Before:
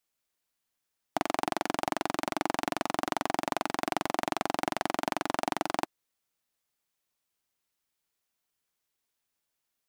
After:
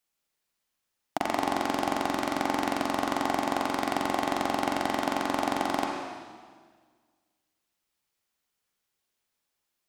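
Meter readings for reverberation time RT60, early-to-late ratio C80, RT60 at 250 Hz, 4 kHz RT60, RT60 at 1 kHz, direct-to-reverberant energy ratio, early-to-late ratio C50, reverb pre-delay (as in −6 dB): 1.7 s, 3.0 dB, 1.8 s, 1.6 s, 1.6 s, 0.0 dB, 1.0 dB, 38 ms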